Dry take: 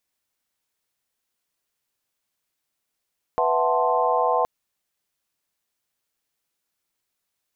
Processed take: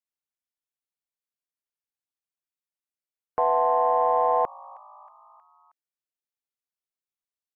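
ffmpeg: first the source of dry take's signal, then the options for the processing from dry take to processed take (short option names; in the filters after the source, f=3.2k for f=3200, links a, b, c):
-f lavfi -i "aevalsrc='0.0596*(sin(2*PI*493.88*t)+sin(2*PI*659.26*t)+sin(2*PI*739.99*t)+sin(2*PI*880*t)+sin(2*PI*1046.5*t))':d=1.07:s=44100"
-filter_complex "[0:a]afftdn=nr=19:nf=-46,acrossover=split=550[a][b];[a]asoftclip=type=tanh:threshold=-28dB[c];[b]asplit=5[d][e][f][g][h];[e]adelay=316,afreqshift=55,volume=-22dB[i];[f]adelay=632,afreqshift=110,volume=-26.9dB[j];[g]adelay=948,afreqshift=165,volume=-31.8dB[k];[h]adelay=1264,afreqshift=220,volume=-36.6dB[l];[d][i][j][k][l]amix=inputs=5:normalize=0[m];[c][m]amix=inputs=2:normalize=0"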